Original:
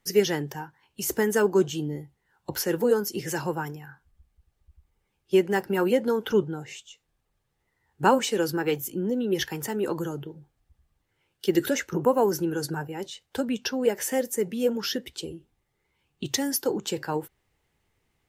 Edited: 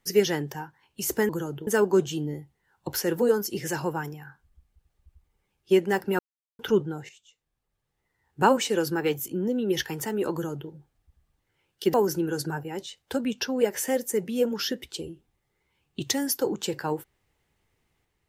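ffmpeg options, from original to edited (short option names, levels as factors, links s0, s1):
-filter_complex "[0:a]asplit=7[s0][s1][s2][s3][s4][s5][s6];[s0]atrim=end=1.292[s7];[s1]atrim=start=9.938:end=10.322[s8];[s2]atrim=start=1.288:end=5.81,asetpts=PTS-STARTPTS,afade=t=out:st=4.518:d=0.004:c=hsin[s9];[s3]atrim=start=5.81:end=6.21,asetpts=PTS-STARTPTS,volume=0[s10];[s4]atrim=start=6.21:end=6.71,asetpts=PTS-STARTPTS,afade=t=in:d=0.004:c=hsin,afade=t=out:st=0.496:d=0.004:c=hsin:silence=0.199526[s11];[s5]atrim=start=6.71:end=11.562,asetpts=PTS-STARTPTS,afade=t=in:d=1.36:silence=0.199526[s12];[s6]atrim=start=12.178[s13];[s7][s8]acrossfade=d=0.004:c1=hsin:c2=hsin[s14];[s9][s10][s11][s12]concat=n=4:v=0:a=1[s15];[s14][s15]acrossfade=d=0.004:c1=hsin:c2=hsin[s16];[s16][s13]acrossfade=d=0.004:c1=hsin:c2=hsin"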